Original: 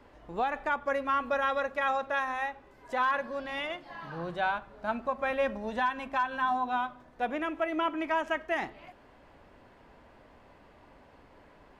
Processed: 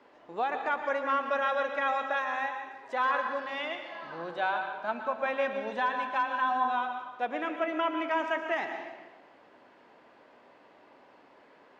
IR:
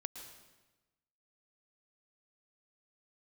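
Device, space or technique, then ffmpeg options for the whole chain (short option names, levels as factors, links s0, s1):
supermarket ceiling speaker: -filter_complex "[0:a]highpass=290,lowpass=6300[s0];[1:a]atrim=start_sample=2205[s1];[s0][s1]afir=irnorm=-1:irlink=0,volume=1.41"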